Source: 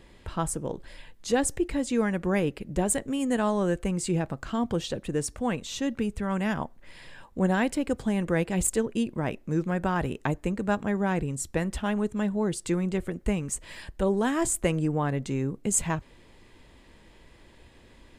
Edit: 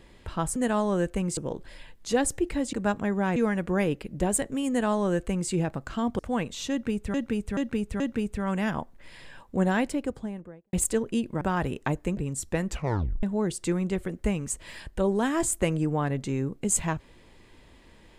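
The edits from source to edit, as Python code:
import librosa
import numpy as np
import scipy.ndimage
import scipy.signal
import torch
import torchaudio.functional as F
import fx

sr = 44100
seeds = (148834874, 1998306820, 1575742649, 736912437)

y = fx.studio_fade_out(x, sr, start_s=7.55, length_s=1.01)
y = fx.edit(y, sr, fx.duplicate(start_s=3.25, length_s=0.81, to_s=0.56),
    fx.cut(start_s=4.75, length_s=0.56),
    fx.repeat(start_s=5.83, length_s=0.43, count=4),
    fx.cut(start_s=9.24, length_s=0.56),
    fx.move(start_s=10.56, length_s=0.63, to_s=1.92),
    fx.tape_stop(start_s=11.7, length_s=0.55), tone=tone)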